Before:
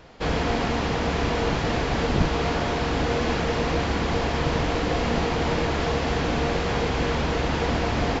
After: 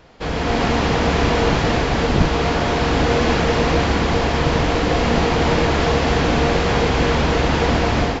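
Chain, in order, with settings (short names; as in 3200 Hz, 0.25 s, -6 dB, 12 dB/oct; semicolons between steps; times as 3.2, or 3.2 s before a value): AGC gain up to 7.5 dB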